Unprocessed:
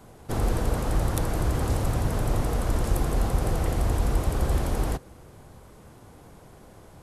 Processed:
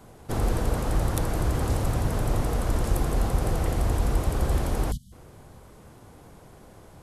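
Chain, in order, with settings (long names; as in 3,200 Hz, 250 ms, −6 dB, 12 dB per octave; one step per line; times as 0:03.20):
time-frequency box erased 0:04.92–0:05.12, 250–2,900 Hz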